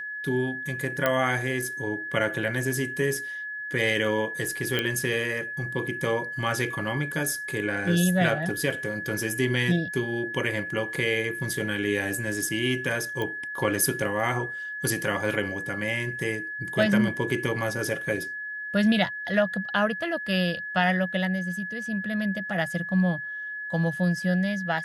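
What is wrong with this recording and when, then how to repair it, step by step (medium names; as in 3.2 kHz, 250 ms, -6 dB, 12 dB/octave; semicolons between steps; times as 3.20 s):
whine 1.7 kHz -32 dBFS
1.06 s: pop -9 dBFS
4.79 s: pop -11 dBFS
13.22 s: pop -18 dBFS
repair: de-click; band-stop 1.7 kHz, Q 30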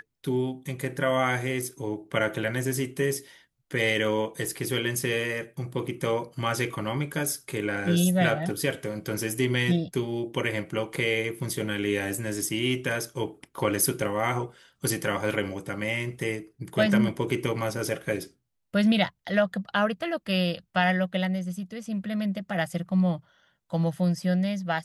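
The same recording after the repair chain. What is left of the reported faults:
nothing left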